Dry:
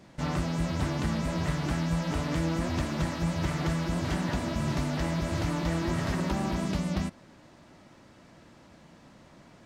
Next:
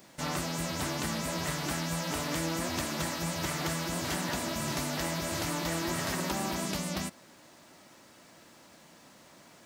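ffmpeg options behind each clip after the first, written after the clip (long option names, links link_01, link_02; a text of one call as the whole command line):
ffmpeg -i in.wav -af "aemphasis=mode=production:type=bsi" out.wav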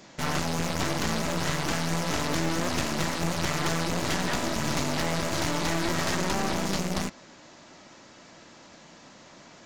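ffmpeg -i in.wav -af "aresample=16000,aresample=44100,aeval=exprs='0.133*(cos(1*acos(clip(val(0)/0.133,-1,1)))-cos(1*PI/2))+0.0237*(cos(5*acos(clip(val(0)/0.133,-1,1)))-cos(5*PI/2))+0.0335*(cos(8*acos(clip(val(0)/0.133,-1,1)))-cos(8*PI/2))':channel_layout=same" out.wav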